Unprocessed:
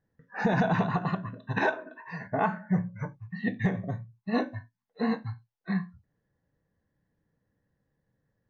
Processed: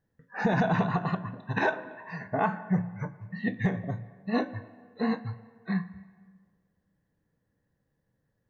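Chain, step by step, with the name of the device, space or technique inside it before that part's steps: filtered reverb send (on a send: high-pass 270 Hz 6 dB/octave + low-pass 3 kHz 12 dB/octave + reverberation RT60 1.7 s, pre-delay 100 ms, DRR 17.5 dB)

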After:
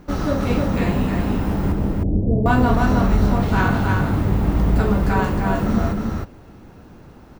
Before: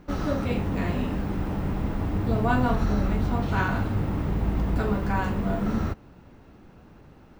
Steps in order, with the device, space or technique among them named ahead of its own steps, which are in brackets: 1.72–2.46 s: steep low-pass 600 Hz 36 dB/octave; exciter from parts (in parallel at -5 dB: high-pass 3.3 kHz 6 dB/octave + saturation -40 dBFS, distortion -9 dB + high-pass 2.6 kHz 12 dB/octave); on the sum: delay 311 ms -3.5 dB; trim +5.5 dB

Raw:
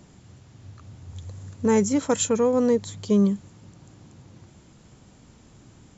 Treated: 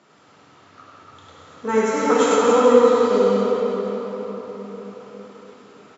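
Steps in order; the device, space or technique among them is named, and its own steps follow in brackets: station announcement (band-pass 440–4100 Hz; peaking EQ 1.3 kHz +10.5 dB 0.25 oct; loudspeakers at several distances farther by 34 m -4 dB, 99 m -9 dB; reverberation RT60 4.8 s, pre-delay 7 ms, DRR -7 dB)

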